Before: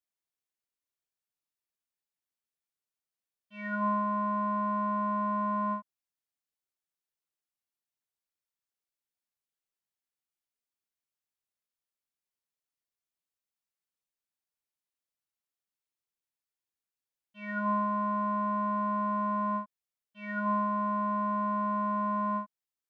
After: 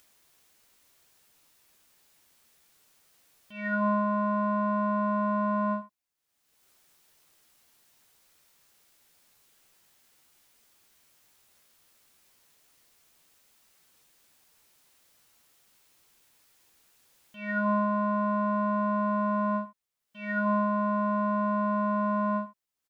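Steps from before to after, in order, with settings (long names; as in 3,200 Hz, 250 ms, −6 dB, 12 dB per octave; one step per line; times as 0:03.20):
upward compression, threshold −50 dBFS
ambience of single reflections 13 ms −8.5 dB, 72 ms −15.5 dB
level +4 dB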